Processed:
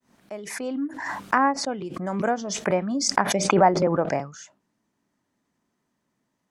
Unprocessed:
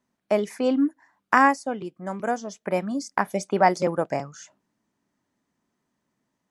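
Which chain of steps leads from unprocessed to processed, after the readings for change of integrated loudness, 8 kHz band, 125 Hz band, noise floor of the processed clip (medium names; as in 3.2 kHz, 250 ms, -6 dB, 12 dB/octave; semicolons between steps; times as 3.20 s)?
+0.5 dB, +10.5 dB, +4.5 dB, -77 dBFS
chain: fade-in on the opening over 2.08 s; low-pass that closes with the level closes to 1.4 kHz, closed at -17.5 dBFS; swell ahead of each attack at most 44 dB/s; trim +1 dB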